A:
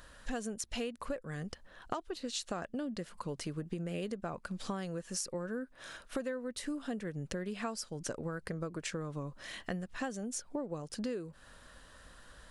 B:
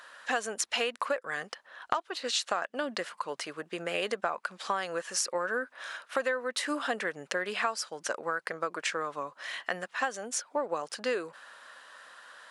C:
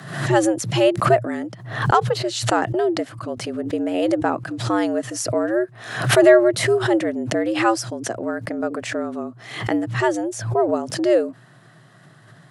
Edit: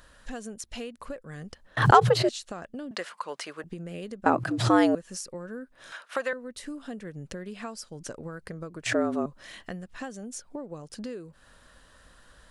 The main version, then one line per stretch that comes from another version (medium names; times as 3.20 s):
A
1.77–2.29 s: from C
2.91–3.64 s: from B
4.26–4.95 s: from C
5.92–6.33 s: from B
8.86–9.26 s: from C